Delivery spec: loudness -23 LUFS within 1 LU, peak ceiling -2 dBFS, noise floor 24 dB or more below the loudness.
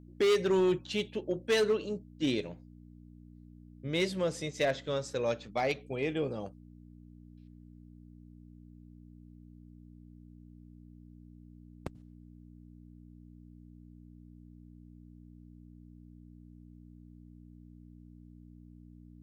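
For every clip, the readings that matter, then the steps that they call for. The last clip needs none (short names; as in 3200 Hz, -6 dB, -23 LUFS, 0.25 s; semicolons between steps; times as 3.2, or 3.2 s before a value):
clipped 0.6%; flat tops at -22.0 dBFS; hum 60 Hz; harmonics up to 300 Hz; hum level -51 dBFS; loudness -32.0 LUFS; peak -22.0 dBFS; loudness target -23.0 LUFS
-> clip repair -22 dBFS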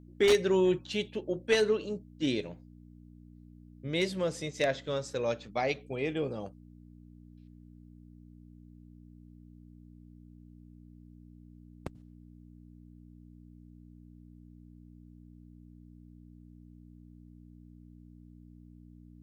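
clipped 0.0%; hum 60 Hz; harmonics up to 300 Hz; hum level -51 dBFS
-> de-hum 60 Hz, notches 5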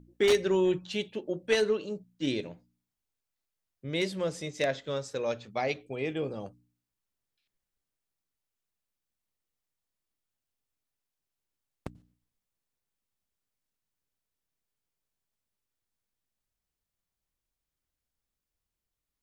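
hum none; loudness -30.5 LUFS; peak -13.0 dBFS; loudness target -23.0 LUFS
-> gain +7.5 dB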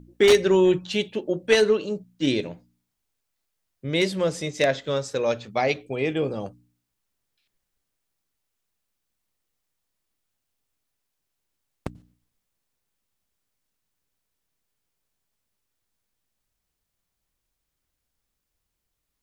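loudness -23.0 LUFS; peak -5.5 dBFS; noise floor -81 dBFS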